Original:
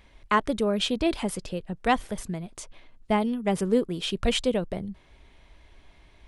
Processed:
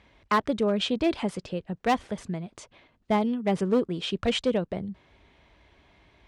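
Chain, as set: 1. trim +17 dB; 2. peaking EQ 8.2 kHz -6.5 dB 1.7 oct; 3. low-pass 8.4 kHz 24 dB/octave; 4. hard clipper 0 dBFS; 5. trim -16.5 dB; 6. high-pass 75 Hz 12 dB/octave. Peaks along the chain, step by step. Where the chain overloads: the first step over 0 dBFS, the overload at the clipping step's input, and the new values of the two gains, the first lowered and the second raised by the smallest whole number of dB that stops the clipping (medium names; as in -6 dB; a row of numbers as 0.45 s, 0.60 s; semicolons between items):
+6.5 dBFS, +6.0 dBFS, +6.0 dBFS, 0.0 dBFS, -16.5 dBFS, -14.0 dBFS; step 1, 6.0 dB; step 1 +11 dB, step 5 -10.5 dB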